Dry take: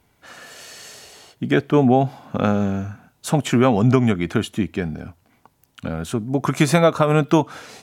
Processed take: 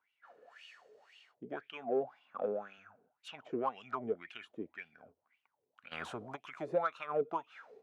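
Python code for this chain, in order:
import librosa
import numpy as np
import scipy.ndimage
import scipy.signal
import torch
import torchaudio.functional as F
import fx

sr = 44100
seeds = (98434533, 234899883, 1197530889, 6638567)

p1 = fx.wah_lfo(x, sr, hz=1.9, low_hz=420.0, high_hz=2900.0, q=8.5)
p2 = fx.cheby2_lowpass(p1, sr, hz=11000.0, order=4, stop_db=40, at=(3.28, 3.69))
p3 = 10.0 ** (-24.5 / 20.0) * np.tanh(p2 / 10.0 ** (-24.5 / 20.0))
p4 = p2 + (p3 * 10.0 ** (-9.0 / 20.0))
p5 = fx.highpass(p4, sr, hz=150.0, slope=12, at=(1.73, 2.78))
p6 = fx.spectral_comp(p5, sr, ratio=4.0, at=(5.91, 6.35), fade=0.02)
y = p6 * 10.0 ** (-6.5 / 20.0)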